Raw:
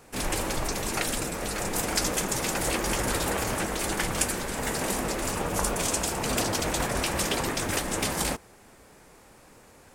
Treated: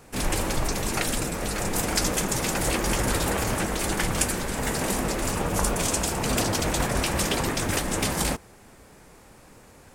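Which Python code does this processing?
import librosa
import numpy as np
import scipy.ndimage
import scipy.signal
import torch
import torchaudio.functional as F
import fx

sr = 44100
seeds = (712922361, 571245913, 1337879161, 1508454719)

y = fx.bass_treble(x, sr, bass_db=4, treble_db=0)
y = y * librosa.db_to_amplitude(1.5)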